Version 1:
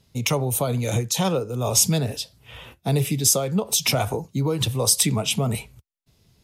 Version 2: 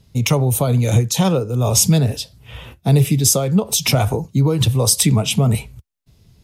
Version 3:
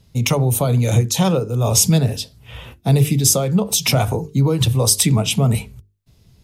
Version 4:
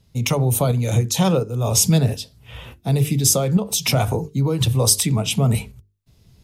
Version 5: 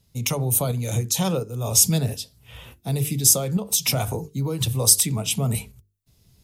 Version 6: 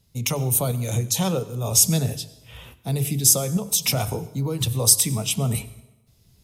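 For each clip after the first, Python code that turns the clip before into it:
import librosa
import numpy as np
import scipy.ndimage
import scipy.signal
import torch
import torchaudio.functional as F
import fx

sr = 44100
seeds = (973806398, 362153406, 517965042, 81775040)

y1 = fx.low_shelf(x, sr, hz=200.0, db=9.0)
y1 = y1 * librosa.db_to_amplitude(3.0)
y2 = fx.hum_notches(y1, sr, base_hz=50, count=9)
y3 = fx.tremolo_shape(y2, sr, shape='saw_up', hz=1.4, depth_pct=45)
y4 = fx.high_shelf(y3, sr, hz=5900.0, db=11.0)
y4 = y4 * librosa.db_to_amplitude(-6.0)
y5 = fx.rev_plate(y4, sr, seeds[0], rt60_s=0.99, hf_ratio=0.8, predelay_ms=80, drr_db=17.5)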